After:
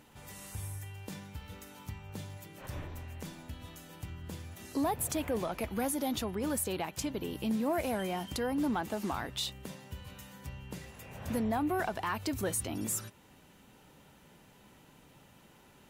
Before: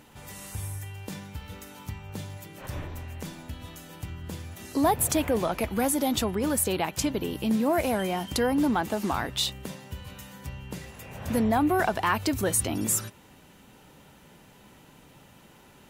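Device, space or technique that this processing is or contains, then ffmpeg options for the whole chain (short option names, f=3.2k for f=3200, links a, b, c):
soft clipper into limiter: -filter_complex "[0:a]asettb=1/sr,asplit=3[a][b][c];[a]atrim=end=5.704[d];[b]atrim=start=5.7:end=6.36,asetpts=PTS-STARTPTS,afade=t=in:d=0.004:c=qsin,afade=t=out:st=0.656:d=0.004:c=qsin,bandreject=f=7.8k:w=9.2[e];[c]atrim=start=6.356[f];[d][e]acrossfade=d=0.004:c1=hsin:c2=qsin[g];[g][f]acrossfade=d=0.004:c1=qsin:c2=hsin,asoftclip=type=tanh:threshold=-13.5dB,alimiter=limit=-18.5dB:level=0:latency=1:release=421,volume=-5.5dB"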